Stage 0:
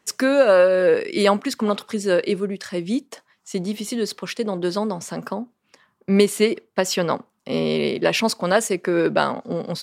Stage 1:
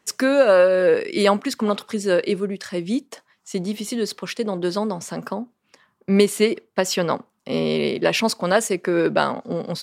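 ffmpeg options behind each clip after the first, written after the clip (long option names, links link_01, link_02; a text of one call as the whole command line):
ffmpeg -i in.wav -af anull out.wav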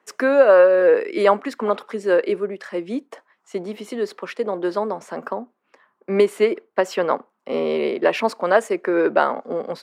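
ffmpeg -i in.wav -filter_complex "[0:a]acrossover=split=280 2200:gain=0.0794 1 0.158[link_01][link_02][link_03];[link_01][link_02][link_03]amix=inputs=3:normalize=0,volume=3dB" out.wav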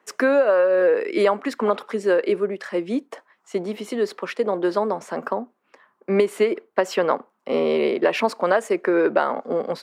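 ffmpeg -i in.wav -af "acompressor=threshold=-16dB:ratio=10,volume=2dB" out.wav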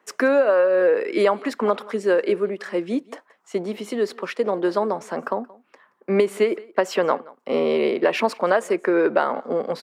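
ffmpeg -i in.wav -af "aecho=1:1:176:0.0708" out.wav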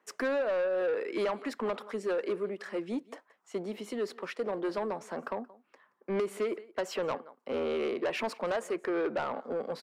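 ffmpeg -i in.wav -af "asoftclip=type=tanh:threshold=-17dB,volume=-8.5dB" out.wav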